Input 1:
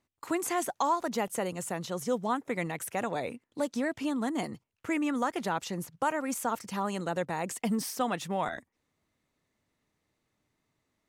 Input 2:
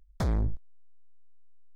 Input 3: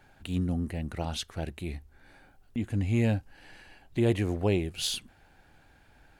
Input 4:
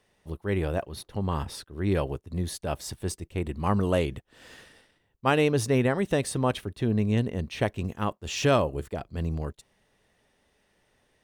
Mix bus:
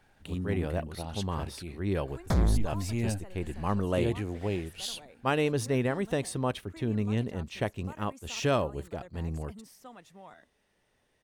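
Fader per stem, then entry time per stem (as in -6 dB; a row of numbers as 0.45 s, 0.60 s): -19.0 dB, +2.5 dB, -5.5 dB, -4.5 dB; 1.85 s, 2.10 s, 0.00 s, 0.00 s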